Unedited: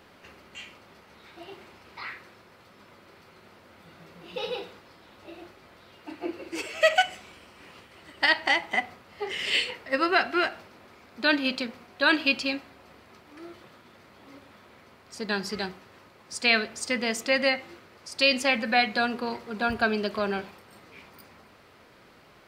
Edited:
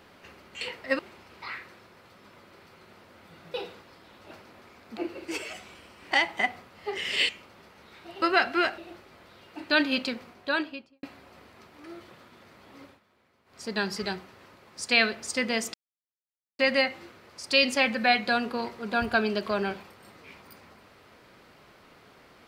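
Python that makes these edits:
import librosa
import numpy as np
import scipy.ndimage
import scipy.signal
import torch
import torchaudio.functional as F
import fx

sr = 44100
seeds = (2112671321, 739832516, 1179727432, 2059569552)

y = fx.studio_fade_out(x, sr, start_s=11.75, length_s=0.81)
y = fx.edit(y, sr, fx.swap(start_s=0.61, length_s=0.93, other_s=9.63, other_length_s=0.38),
    fx.cut(start_s=4.09, length_s=0.43),
    fx.swap(start_s=5.29, length_s=0.92, other_s=10.57, other_length_s=0.66),
    fx.cut(start_s=6.77, length_s=0.34),
    fx.cut(start_s=7.69, length_s=0.76),
    fx.fade_down_up(start_s=14.35, length_s=0.81, db=-14.0, fade_s=0.18, curve='qsin'),
    fx.insert_silence(at_s=17.27, length_s=0.85), tone=tone)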